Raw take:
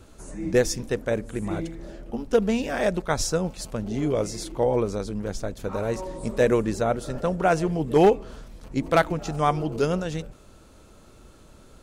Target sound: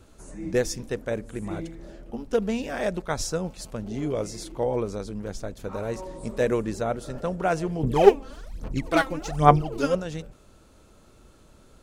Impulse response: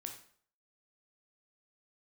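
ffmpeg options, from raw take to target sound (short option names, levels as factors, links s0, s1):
-filter_complex "[0:a]asettb=1/sr,asplit=3[s0][s1][s2];[s0]atrim=end=7.834[s3];[s1]atrim=start=7.83:end=9.95,asetpts=PTS-STARTPTS,afade=t=in:d=0.004:c=qsin,afade=t=out:st=2.116:d=0.004:c=qsin,aphaser=in_gain=1:out_gain=1:delay=3.8:decay=0.77:speed=1.2:type=sinusoidal[s4];[s2]atrim=start=9.946[s5];[s3][s4]acrossfade=d=0.004:c1=hsin:c2=qsin[s6];[s6][s5]acrossfade=d=0.004:c1=qsin:c2=hsin,volume=0.668"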